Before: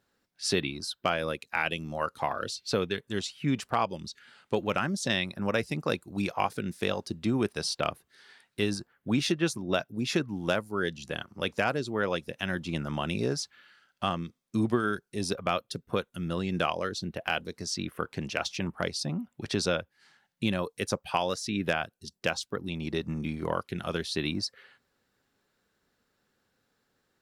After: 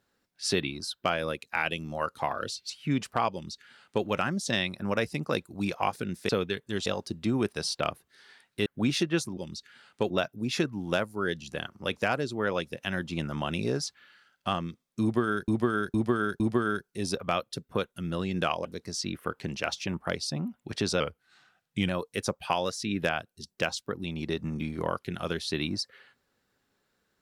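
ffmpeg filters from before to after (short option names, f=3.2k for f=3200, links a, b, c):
-filter_complex "[0:a]asplit=13[a][b][c][d][e][f][g][h][i][j][k][l][m];[a]atrim=end=2.702[n];[b]atrim=start=3.268:end=6.862[o];[c]atrim=start=2.698:end=3.272[p];[d]atrim=start=6.858:end=8.662[q];[e]atrim=start=8.948:end=9.662[r];[f]atrim=start=3.888:end=4.622[s];[g]atrim=start=9.658:end=15.042[t];[h]atrim=start=14.578:end=15.042[u];[i]atrim=start=14.578:end=15.042[v];[j]atrim=start=14.578:end=16.832[w];[k]atrim=start=17.378:end=19.734[x];[l]atrim=start=19.73:end=20.53,asetpts=PTS-STARTPTS,asetrate=39690,aresample=44100[y];[m]atrim=start=20.526[z];[n][o]acrossfade=d=0.004:c1=hsin:c2=hsin[aa];[aa][p]acrossfade=d=0.004:c1=hsin:c2=hsin[ab];[ab][q]acrossfade=d=0.004:c1=hsin:c2=hsin[ac];[ac][r]acrossfade=d=0.004:c1=hsin:c2=hsin[ad];[ad][s]acrossfade=d=0.004:c1=hsin:c2=hsin[ae];[ae][t]acrossfade=d=0.004:c1=hsin:c2=hsin[af];[af][u]acrossfade=d=0.004:c1=hsin:c2=hsin[ag];[ag][v]acrossfade=d=0.004:c1=hsin:c2=hsin[ah];[ah][w]acrossfade=d=0.004:c1=hsin:c2=hsin[ai];[ai][x]acrossfade=d=0.004:c1=hsin:c2=hsin[aj];[aj][y]acrossfade=d=0.004:c1=hsin:c2=hsin[ak];[ak][z]acrossfade=d=0.004:c1=hsin:c2=hsin"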